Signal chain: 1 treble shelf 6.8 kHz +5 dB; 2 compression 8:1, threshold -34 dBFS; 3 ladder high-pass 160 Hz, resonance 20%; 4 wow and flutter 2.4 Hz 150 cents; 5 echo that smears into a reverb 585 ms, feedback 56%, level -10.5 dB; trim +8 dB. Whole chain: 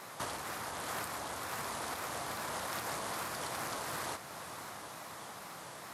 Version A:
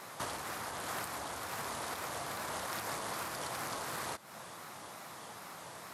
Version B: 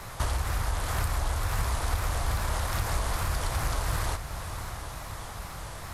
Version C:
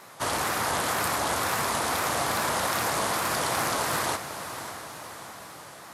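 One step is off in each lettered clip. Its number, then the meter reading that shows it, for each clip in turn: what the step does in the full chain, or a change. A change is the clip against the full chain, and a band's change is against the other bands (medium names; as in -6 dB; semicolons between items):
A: 5, echo-to-direct -9.0 dB to none; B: 3, 125 Hz band +16.5 dB; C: 2, momentary loudness spread change +6 LU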